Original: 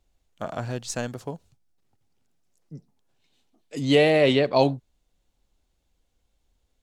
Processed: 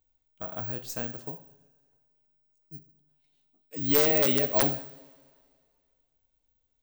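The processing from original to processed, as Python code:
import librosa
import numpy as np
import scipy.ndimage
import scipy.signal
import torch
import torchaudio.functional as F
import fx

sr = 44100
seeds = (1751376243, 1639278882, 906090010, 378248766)

y = (np.kron(scipy.signal.resample_poly(x, 1, 2), np.eye(2)[0]) * 2)[:len(x)]
y = (np.mod(10.0 ** (2.0 / 20.0) * y + 1.0, 2.0) - 1.0) / 10.0 ** (2.0 / 20.0)
y = fx.rev_double_slope(y, sr, seeds[0], early_s=0.66, late_s=2.2, knee_db=-18, drr_db=7.0)
y = y * 10.0 ** (-8.5 / 20.0)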